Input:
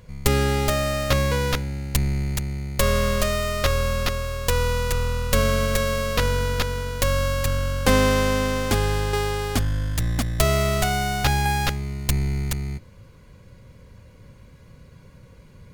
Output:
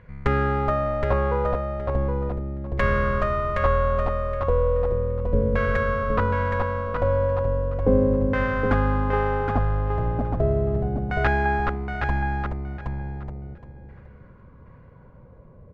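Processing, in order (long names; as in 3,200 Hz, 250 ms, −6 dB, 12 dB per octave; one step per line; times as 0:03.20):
auto-filter low-pass saw down 0.36 Hz 330–1,800 Hz
repeating echo 769 ms, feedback 17%, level −5 dB
level −2.5 dB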